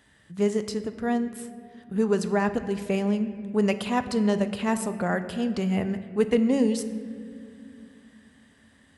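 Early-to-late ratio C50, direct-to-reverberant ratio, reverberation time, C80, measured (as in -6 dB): 11.5 dB, 9.5 dB, 2.4 s, 12.5 dB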